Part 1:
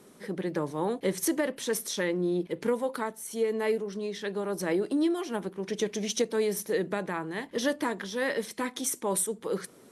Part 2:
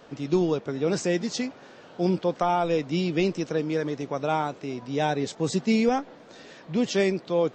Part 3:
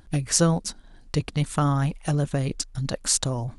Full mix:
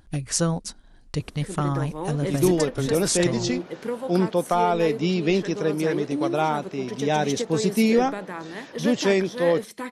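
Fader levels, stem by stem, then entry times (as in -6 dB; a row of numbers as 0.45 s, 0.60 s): -1.5 dB, +2.5 dB, -3.0 dB; 1.20 s, 2.10 s, 0.00 s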